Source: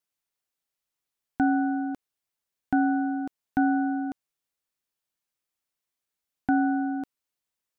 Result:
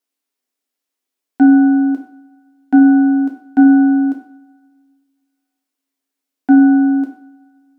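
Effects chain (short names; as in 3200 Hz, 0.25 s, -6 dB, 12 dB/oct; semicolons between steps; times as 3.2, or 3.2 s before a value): resonant low shelf 190 Hz -13 dB, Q 3; two-slope reverb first 0.5 s, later 2.3 s, from -26 dB, DRR 1.5 dB; gain +2.5 dB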